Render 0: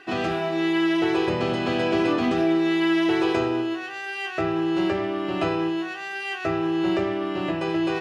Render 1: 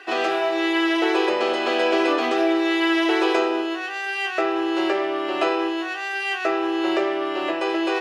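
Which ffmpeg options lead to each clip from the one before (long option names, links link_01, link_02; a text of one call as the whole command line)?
ffmpeg -i in.wav -af "highpass=frequency=370:width=0.5412,highpass=frequency=370:width=1.3066,volume=5dB" out.wav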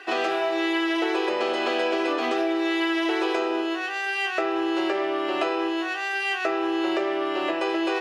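ffmpeg -i in.wav -af "acompressor=threshold=-21dB:ratio=6" out.wav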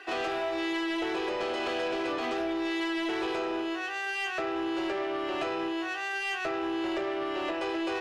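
ffmpeg -i in.wav -af "asoftclip=type=tanh:threshold=-21.5dB,volume=-4dB" out.wav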